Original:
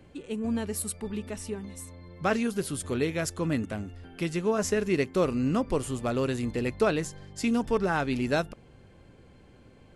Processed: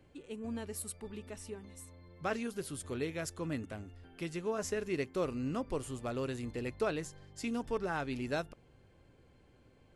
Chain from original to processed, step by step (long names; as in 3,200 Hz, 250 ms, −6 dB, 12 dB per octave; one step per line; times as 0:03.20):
parametric band 200 Hz −5 dB 0.38 octaves
level −8.5 dB